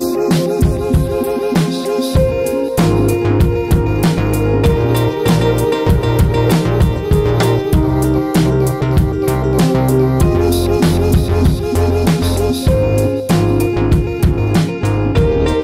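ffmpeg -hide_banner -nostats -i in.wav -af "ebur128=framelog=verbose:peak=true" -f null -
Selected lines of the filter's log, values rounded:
Integrated loudness:
  I:         -14.0 LUFS
  Threshold: -24.0 LUFS
Loudness range:
  LRA:         1.1 LU
  Threshold: -33.9 LUFS
  LRA low:   -14.6 LUFS
  LRA high:  -13.5 LUFS
True peak:
  Peak:       -3.6 dBFS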